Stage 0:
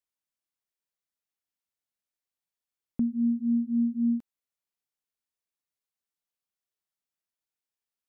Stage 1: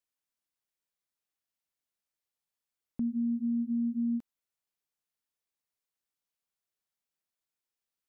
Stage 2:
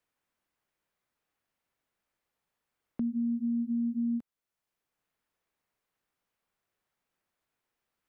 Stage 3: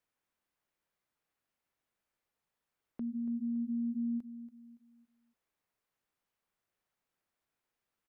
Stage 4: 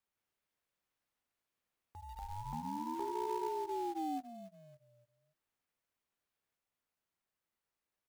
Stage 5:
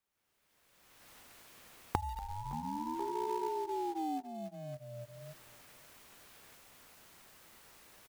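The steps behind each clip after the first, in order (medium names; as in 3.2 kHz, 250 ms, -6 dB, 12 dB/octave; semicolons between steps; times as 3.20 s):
peak limiter -26 dBFS, peak gain reduction 6 dB
three bands compressed up and down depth 40%
peak limiter -29 dBFS, peak gain reduction 5.5 dB; on a send: feedback delay 283 ms, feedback 37%, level -13.5 dB; on the sum: trim -3.5 dB
ever faster or slower copies 151 ms, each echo +4 st, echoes 3; short-mantissa float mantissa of 2-bit; ring modulator with a swept carrier 510 Hz, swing 30%, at 0.3 Hz; trim -1 dB
recorder AGC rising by 27 dB/s; delay 563 ms -21.5 dB; trim +1.5 dB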